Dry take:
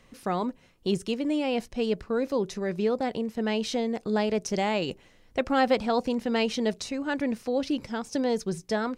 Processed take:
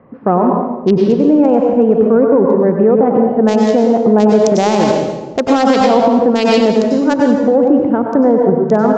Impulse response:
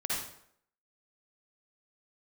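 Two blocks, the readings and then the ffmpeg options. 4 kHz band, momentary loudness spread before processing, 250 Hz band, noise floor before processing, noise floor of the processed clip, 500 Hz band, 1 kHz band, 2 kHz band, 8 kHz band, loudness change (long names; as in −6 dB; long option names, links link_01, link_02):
+8.0 dB, 6 LU, +17.0 dB, −59 dBFS, −26 dBFS, +17.5 dB, +15.5 dB, +8.5 dB, +9.5 dB, +16.5 dB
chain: -filter_complex "[0:a]highpass=130,acrossover=split=1300[link_01][link_02];[link_02]acrusher=bits=3:mix=0:aa=0.5[link_03];[link_01][link_03]amix=inputs=2:normalize=0,aeval=exprs='0.335*(cos(1*acos(clip(val(0)/0.335,-1,1)))-cos(1*PI/2))+0.00422*(cos(7*acos(clip(val(0)/0.335,-1,1)))-cos(7*PI/2))':channel_layout=same,asplit=2[link_04][link_05];[1:a]atrim=start_sample=2205,asetrate=24696,aresample=44100[link_06];[link_05][link_06]afir=irnorm=-1:irlink=0,volume=-8dB[link_07];[link_04][link_07]amix=inputs=2:normalize=0,aresample=16000,aresample=44100,alimiter=level_in=15.5dB:limit=-1dB:release=50:level=0:latency=1,volume=-1dB"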